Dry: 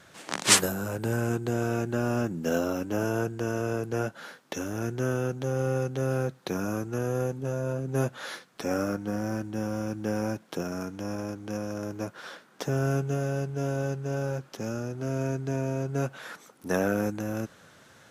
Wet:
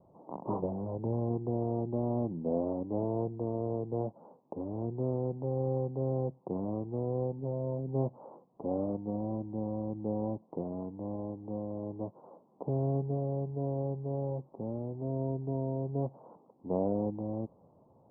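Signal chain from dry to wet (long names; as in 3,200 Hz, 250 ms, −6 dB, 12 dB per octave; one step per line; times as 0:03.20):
Butterworth low-pass 1,000 Hz 72 dB per octave
level −4 dB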